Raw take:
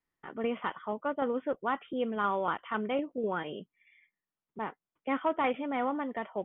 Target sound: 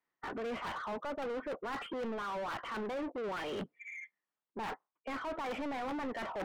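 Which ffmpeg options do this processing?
-filter_complex "[0:a]afftdn=nr=24:nf=-54,areverse,acompressor=threshold=-44dB:ratio=12,areverse,aeval=exprs='(mod(66.8*val(0)+1,2)-1)/66.8':c=same,asplit=2[a][b];[b]highpass=f=720:p=1,volume=32dB,asoftclip=type=tanh:threshold=-36dB[c];[a][c]amix=inputs=2:normalize=0,lowpass=f=1.5k:p=1,volume=-6dB,volume=5dB"

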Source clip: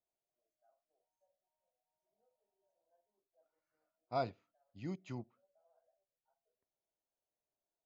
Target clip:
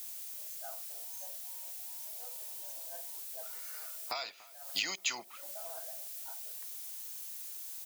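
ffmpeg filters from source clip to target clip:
-filter_complex "[0:a]apsyclip=36dB,highpass=940,acompressor=threshold=-37dB:ratio=12,asplit=2[a][b];[b]adelay=290,lowpass=f=2k:p=1,volume=-20.5dB,asplit=2[c][d];[d]adelay=290,lowpass=f=2k:p=1,volume=0.53,asplit=2[e][f];[f]adelay=290,lowpass=f=2k:p=1,volume=0.53,asplit=2[g][h];[h]adelay=290,lowpass=f=2k:p=1,volume=0.53[i];[a][c][e][g][i]amix=inputs=5:normalize=0,crystalizer=i=8.5:c=0,volume=-6dB"

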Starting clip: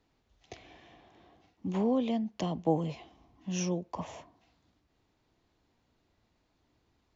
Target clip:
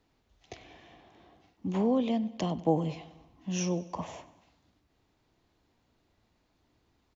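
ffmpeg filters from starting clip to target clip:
-af "aecho=1:1:96|192|288|384|480:0.112|0.0628|0.0352|0.0197|0.011,volume=1.5dB"

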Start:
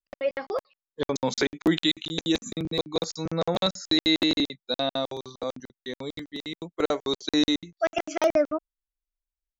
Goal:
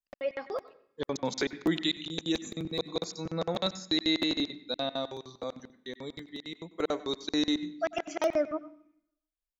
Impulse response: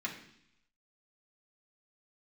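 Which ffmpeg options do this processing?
-filter_complex "[0:a]asplit=2[a][b];[1:a]atrim=start_sample=2205,adelay=93[c];[b][c]afir=irnorm=-1:irlink=0,volume=-17dB[d];[a][d]amix=inputs=2:normalize=0,volume=-5.5dB"

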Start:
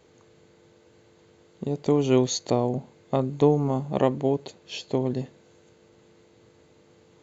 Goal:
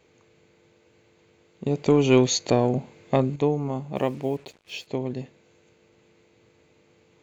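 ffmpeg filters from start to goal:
-filter_complex "[0:a]asettb=1/sr,asplit=3[a][b][c];[a]atrim=end=1.664[d];[b]atrim=start=1.66:end=3.36,asetpts=PTS-STARTPTS,afade=t=in:d=0.004:c=qsin,afade=t=out:st=1.696:d=0.004:c=qsin,acontrast=85[e];[c]atrim=start=3.356[f];[d][e]acrossfade=d=0.004:c1=hsin:c2=qsin[g];[g][f]acrossfade=d=0.004:c1=qsin:c2=hsin,asettb=1/sr,asplit=3[h][i][j];[h]atrim=end=3.964[k];[i]atrim=start=3.96:end=4.87,asetpts=PTS-STARTPTS,afade=t=in:d=0.004:c=qsin,afade=t=out:st=0.906:d=0.004:c=qsin,acrusher=bits=7:mix=0:aa=0.5[l];[j]atrim=start=4.866[m];[k][l]acrossfade=d=0.004:c1=hsin:c2=qsin[n];[n][m]acrossfade=d=0.004:c1=qsin:c2=hsin,equalizer=f=2.4k:w=3.1:g=8.5,volume=-3.5dB"

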